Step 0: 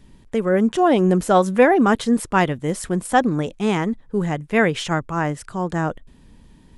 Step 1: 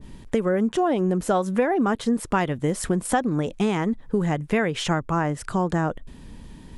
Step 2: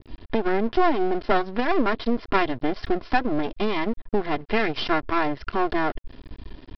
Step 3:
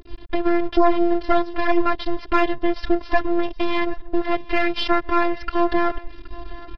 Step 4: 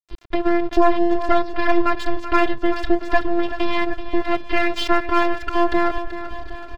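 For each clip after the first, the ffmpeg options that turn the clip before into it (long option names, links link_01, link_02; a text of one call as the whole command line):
ffmpeg -i in.wav -af "acompressor=threshold=-26dB:ratio=6,adynamicequalizer=threshold=0.00708:dfrequency=1600:dqfactor=0.7:tfrequency=1600:tqfactor=0.7:attack=5:release=100:ratio=0.375:range=2:mode=cutabove:tftype=highshelf,volume=6.5dB" out.wav
ffmpeg -i in.wav -af "aecho=1:1:2.9:0.82,aresample=11025,aeval=exprs='max(val(0),0)':channel_layout=same,aresample=44100,volume=2.5dB" out.wav
ffmpeg -i in.wav -af "afftfilt=real='hypot(re,im)*cos(PI*b)':imag='0':win_size=512:overlap=0.75,aecho=1:1:771|1542:0.0944|0.0236,acontrast=51" out.wav
ffmpeg -i in.wav -filter_complex "[0:a]aeval=exprs='sgn(val(0))*max(abs(val(0))-0.0251,0)':channel_layout=same,asplit=2[link_01][link_02];[link_02]aecho=0:1:382|764|1146|1528|1910|2292:0.251|0.138|0.076|0.0418|0.023|0.0126[link_03];[link_01][link_03]amix=inputs=2:normalize=0,volume=1.5dB" out.wav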